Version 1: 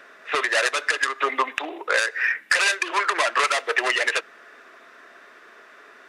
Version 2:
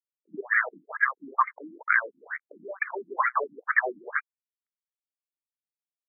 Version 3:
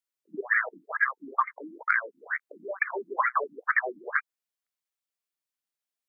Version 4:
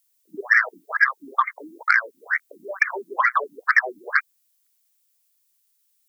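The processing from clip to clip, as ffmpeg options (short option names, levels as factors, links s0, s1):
-af "aeval=exprs='sgn(val(0))*max(abs(val(0))-0.015,0)':c=same,acrusher=bits=5:mode=log:mix=0:aa=0.000001,afftfilt=real='re*between(b*sr/1024,230*pow(1700/230,0.5+0.5*sin(2*PI*2.2*pts/sr))/1.41,230*pow(1700/230,0.5+0.5*sin(2*PI*2.2*pts/sr))*1.41)':imag='im*between(b*sr/1024,230*pow(1700/230,0.5+0.5*sin(2*PI*2.2*pts/sr))/1.41,230*pow(1700/230,0.5+0.5*sin(2*PI*2.2*pts/sr))*1.41)':win_size=1024:overlap=0.75,volume=1.26"
-af "acompressor=threshold=0.0562:ratio=6,lowshelf=f=270:g=-9,bandreject=f=890:w=20,volume=1.68"
-af "acontrast=48,crystalizer=i=8.5:c=0,volume=0.531"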